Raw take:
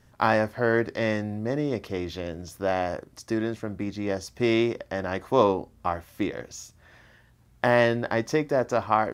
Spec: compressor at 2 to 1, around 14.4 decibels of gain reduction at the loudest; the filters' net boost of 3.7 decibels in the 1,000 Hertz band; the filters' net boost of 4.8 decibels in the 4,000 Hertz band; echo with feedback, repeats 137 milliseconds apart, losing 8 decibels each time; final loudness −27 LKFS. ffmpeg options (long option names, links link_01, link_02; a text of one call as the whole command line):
ffmpeg -i in.wav -af "equalizer=frequency=1000:width_type=o:gain=4.5,equalizer=frequency=4000:width_type=o:gain=6,acompressor=threshold=-40dB:ratio=2,aecho=1:1:137|274|411|548|685:0.398|0.159|0.0637|0.0255|0.0102,volume=9dB" out.wav